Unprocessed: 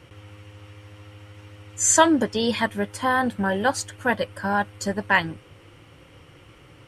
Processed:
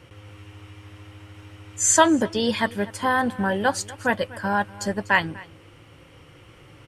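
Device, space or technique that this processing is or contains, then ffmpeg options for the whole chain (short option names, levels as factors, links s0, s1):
ducked delay: -filter_complex "[0:a]asplit=3[s0][s1][s2];[s1]adelay=245,volume=0.562[s3];[s2]apad=whole_len=313958[s4];[s3][s4]sidechaincompress=threshold=0.0158:ratio=4:attack=23:release=1090[s5];[s0][s5]amix=inputs=2:normalize=0"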